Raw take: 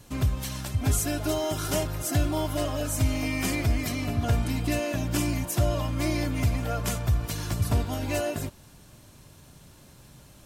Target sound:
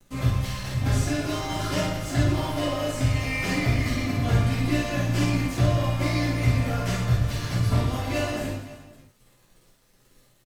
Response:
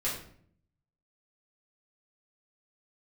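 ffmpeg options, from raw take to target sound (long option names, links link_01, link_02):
-filter_complex "[0:a]acrossover=split=6000[link_01][link_02];[link_02]acompressor=threshold=-52dB:ratio=6[link_03];[link_01][link_03]amix=inputs=2:normalize=0,aeval=exprs='sgn(val(0))*max(abs(val(0))-0.00447,0)':channel_layout=same,aecho=1:1:50|120|218|355.2|547.3:0.631|0.398|0.251|0.158|0.1[link_04];[1:a]atrim=start_sample=2205,atrim=end_sample=3528[link_05];[link_04][link_05]afir=irnorm=-1:irlink=0,volume=-2dB"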